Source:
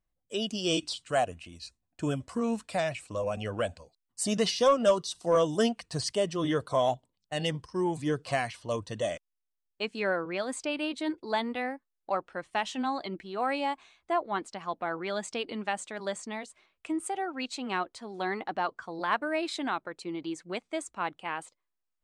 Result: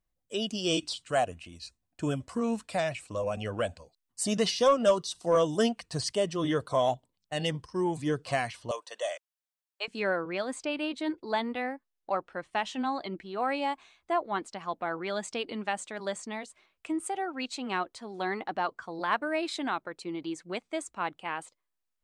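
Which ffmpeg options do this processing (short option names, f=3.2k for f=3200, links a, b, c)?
-filter_complex "[0:a]asettb=1/sr,asplit=3[a][b][c];[a]atrim=end=8.714[d];[b]atrim=start=8.71:end=9.88,asetpts=PTS-STARTPTS,afade=t=in:d=0.004:c=qsin,afade=t=out:st=1.166:d=0.004:c=qsin,highpass=f=550:w=0.5412,highpass=f=550:w=1.3066[e];[c]atrim=start=9.876[f];[d][e]acrossfade=d=0.004:c1=hsin:c2=qsin[g];[g][f]acrossfade=d=0.004:c1=qsin:c2=hsin,asettb=1/sr,asplit=3[h][i][j];[h]atrim=end=10.424[k];[i]atrim=start=10.42:end=13.62,asetpts=PTS-STARTPTS,afade=t=in:d=0.004:c=qsin,afade=t=out:st=3.196:d=0.004:c=qsin,highshelf=f=6.6k:g=-6[l];[j]atrim=start=13.616[m];[k][l]acrossfade=d=0.004:c1=hsin:c2=qsin[n];[n][m]acrossfade=d=0.004:c1=qsin:c2=hsin"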